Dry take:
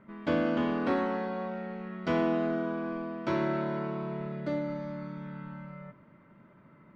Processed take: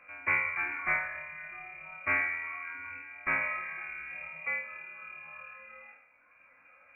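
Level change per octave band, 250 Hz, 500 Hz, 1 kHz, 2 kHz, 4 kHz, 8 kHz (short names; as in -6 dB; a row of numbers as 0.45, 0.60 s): -23.5 dB, -17.0 dB, -3.5 dB, +10.0 dB, under -10 dB, n/a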